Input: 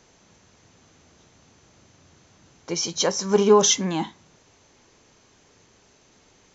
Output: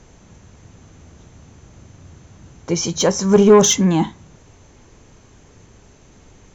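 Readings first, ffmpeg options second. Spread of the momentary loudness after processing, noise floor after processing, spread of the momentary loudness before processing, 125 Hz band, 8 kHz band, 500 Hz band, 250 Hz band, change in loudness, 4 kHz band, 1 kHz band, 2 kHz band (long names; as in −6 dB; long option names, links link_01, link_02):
12 LU, −49 dBFS, 14 LU, +11.5 dB, can't be measured, +6.0 dB, +10.0 dB, +6.0 dB, +1.5 dB, +3.5 dB, +5.0 dB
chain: -af "aemphasis=mode=reproduction:type=bsi,acontrast=78,aexciter=amount=4.3:drive=3.5:freq=6700,volume=-1dB"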